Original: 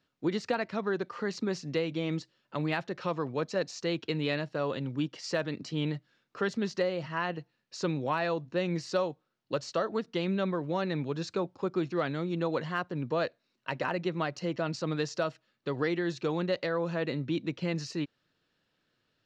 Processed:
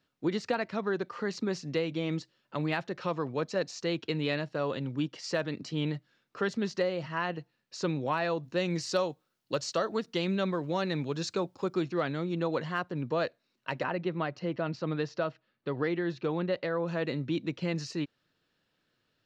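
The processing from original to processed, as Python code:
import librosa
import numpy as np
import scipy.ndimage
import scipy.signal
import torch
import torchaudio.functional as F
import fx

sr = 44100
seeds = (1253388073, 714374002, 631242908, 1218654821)

y = fx.high_shelf(x, sr, hz=4500.0, db=10.0, at=(8.43, 11.83))
y = fx.air_absorb(y, sr, metres=180.0, at=(13.83, 16.88))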